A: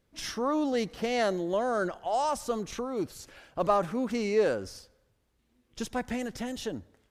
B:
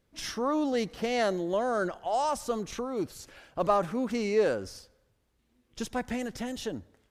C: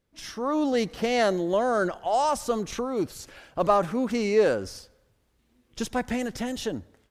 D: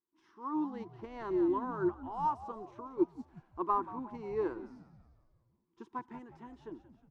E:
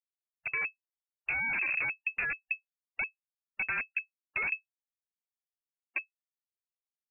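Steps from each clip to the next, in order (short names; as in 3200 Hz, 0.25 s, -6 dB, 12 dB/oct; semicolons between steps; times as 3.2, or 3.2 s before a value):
nothing audible
AGC gain up to 8.5 dB; gain -4 dB
double band-pass 590 Hz, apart 1.5 oct; on a send: frequency-shifting echo 0.18 s, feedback 57%, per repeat -92 Hz, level -11 dB; on the sum: upward expander 1.5:1, over -46 dBFS; gain +2.5 dB
Schmitt trigger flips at -32 dBFS; inverted band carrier 2600 Hz; spectral gate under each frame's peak -30 dB strong; gain +6 dB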